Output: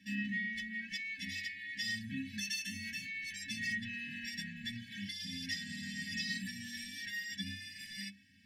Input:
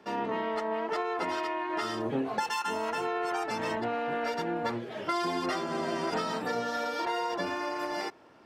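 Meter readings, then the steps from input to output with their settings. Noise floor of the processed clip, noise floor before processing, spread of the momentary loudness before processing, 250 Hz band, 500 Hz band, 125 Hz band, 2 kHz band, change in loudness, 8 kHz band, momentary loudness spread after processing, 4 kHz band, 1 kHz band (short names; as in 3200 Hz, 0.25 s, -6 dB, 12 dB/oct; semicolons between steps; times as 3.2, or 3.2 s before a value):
-52 dBFS, -44 dBFS, 2 LU, -8.0 dB, under -40 dB, -3.0 dB, -1.5 dB, -7.5 dB, +0.5 dB, 6 LU, -0.5 dB, under -40 dB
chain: metallic resonator 94 Hz, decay 0.36 s, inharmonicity 0.03; in parallel at -1 dB: limiter -36 dBFS, peak gain reduction 8 dB; on the sum: FFT band-reject 290–1600 Hz; gain +5.5 dB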